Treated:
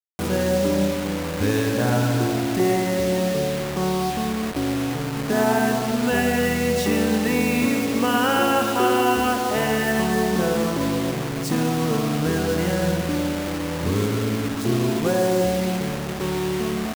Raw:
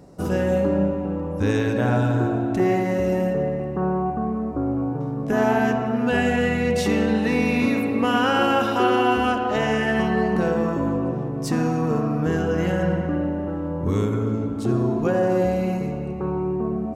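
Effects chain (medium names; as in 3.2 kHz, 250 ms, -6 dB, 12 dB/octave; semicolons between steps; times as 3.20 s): high-pass 50 Hz 6 dB/octave; bit crusher 5-bit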